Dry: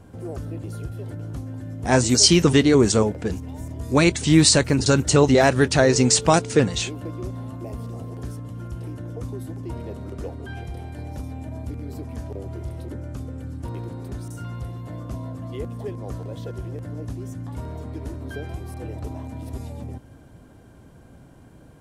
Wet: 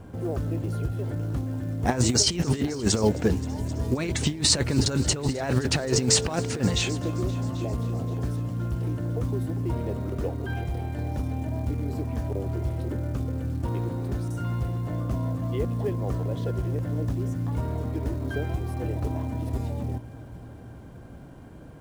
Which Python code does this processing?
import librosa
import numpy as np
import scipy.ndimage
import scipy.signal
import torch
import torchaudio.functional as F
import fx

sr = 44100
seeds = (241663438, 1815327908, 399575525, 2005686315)

y = fx.high_shelf(x, sr, hz=4300.0, db=-8.5)
y = fx.over_compress(y, sr, threshold_db=-21.0, ratio=-0.5)
y = fx.quant_float(y, sr, bits=4)
y = fx.echo_heads(y, sr, ms=263, heads='all three', feedback_pct=41, wet_db=-23)